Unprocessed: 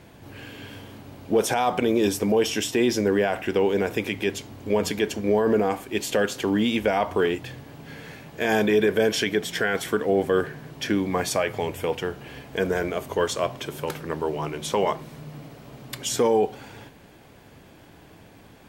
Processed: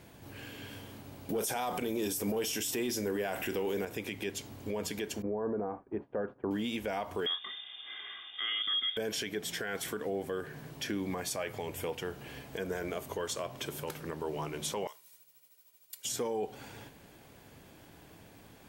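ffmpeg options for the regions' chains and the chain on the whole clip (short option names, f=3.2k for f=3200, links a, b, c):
-filter_complex "[0:a]asettb=1/sr,asplit=3[a][b][c];[a]atrim=end=1.294[d];[b]atrim=start=1.29:end=3.85,asetpts=PTS-STARTPTS,afade=t=in:d=0.004:c=qsin,afade=t=out:st=2.556:d=0.004:c=qsin,highshelf=f=9k:g=11.5,acontrast=82,asplit=2[e][f];[f]adelay=37,volume=-14dB[g];[e][g]amix=inputs=2:normalize=0,atrim=end_sample=112896[h];[c]atrim=start=3.846[i];[d][h]acrossfade=d=0.004:c1=hsin:c2=qsin[j];[j][i]acrossfade=d=0.004:c1=qsin:c2=hsin,asettb=1/sr,asplit=3[k][l][m];[k]atrim=end=5.224[n];[l]atrim=start=5.22:end=6.51,asetpts=PTS-STARTPTS,afade=t=in:d=0.004:c=qsin,afade=t=out:st=1.286:d=0.004:c=qsin,lowpass=f=1.3k:w=0.5412,lowpass=f=1.3k:w=1.3066,agate=range=-33dB:threshold=-33dB:ratio=3:release=100:detection=peak[o];[m]atrim=start=6.506[p];[n][o]acrossfade=d=0.004:c1=hsin:c2=qsin[q];[q][p]acrossfade=d=0.004:c1=qsin:c2=hsin,asettb=1/sr,asplit=3[r][s][t];[r]atrim=end=7.264[u];[s]atrim=start=7.26:end=8.97,asetpts=PTS-STARTPTS,afade=t=in:d=0.004:c=qsin,afade=t=out:st=1.706:d=0.004:c=qsin,aecho=1:1:2.4:0.61,atrim=end_sample=75411,acrusher=bits=8:mix=0:aa=0.5,lowpass=f=3.1k:t=q:w=0.5098,lowpass=f=3.1k:t=q:w=0.6013,lowpass=f=3.1k:t=q:w=0.9,lowpass=f=3.1k:t=q:w=2.563,afreqshift=-3700[v];[t]atrim=start=8.966[w];[u][v]acrossfade=d=0.004:c1=hsin:c2=qsin[x];[x][w]acrossfade=d=0.004:c1=qsin:c2=hsin,asettb=1/sr,asplit=3[y][z][aa];[y]atrim=end=14.874[ab];[z]atrim=start=14.87:end=16.05,asetpts=PTS-STARTPTS,afade=t=in:d=0.004:c=qsin,afade=t=out:st=1.176:d=0.004:c=qsin,aderivative,aecho=1:1:2.1:0.44,atrim=end_sample=52038,agate=range=-33dB:threshold=-50dB:ratio=3:release=100:detection=peak[ac];[aa]atrim=start=16.046[ad];[ab][ac]acrossfade=d=0.004:c1=hsin:c2=qsin[ae];[ae][ad]acrossfade=d=0.004:c1=qsin:c2=hsin,highshelf=f=6.1k:g=7.5,alimiter=limit=-19.5dB:level=0:latency=1:release=175,volume=-6dB"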